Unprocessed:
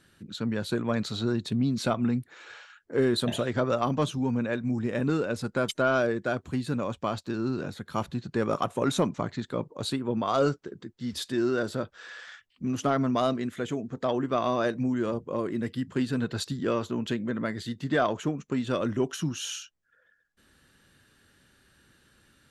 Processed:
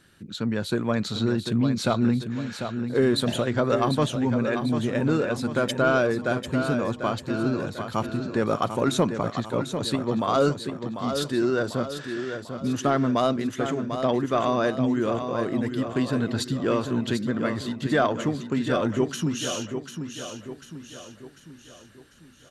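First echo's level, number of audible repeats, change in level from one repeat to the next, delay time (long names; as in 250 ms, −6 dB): −8.0 dB, 5, −6.5 dB, 745 ms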